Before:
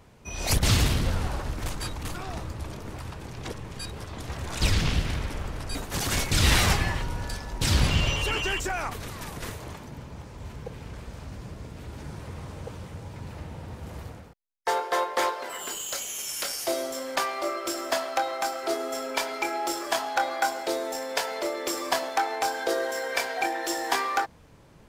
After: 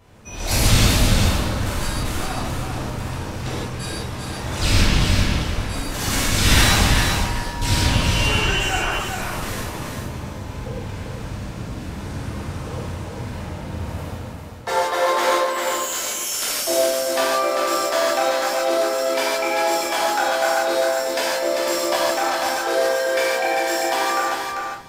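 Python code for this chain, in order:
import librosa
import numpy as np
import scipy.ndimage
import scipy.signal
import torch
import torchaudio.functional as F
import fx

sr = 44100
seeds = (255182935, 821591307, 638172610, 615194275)

y = fx.rider(x, sr, range_db=3, speed_s=2.0)
y = fx.echo_feedback(y, sr, ms=394, feedback_pct=15, wet_db=-5)
y = fx.rev_gated(y, sr, seeds[0], gate_ms=190, shape='flat', drr_db=-8.0)
y = F.gain(torch.from_numpy(y), -2.5).numpy()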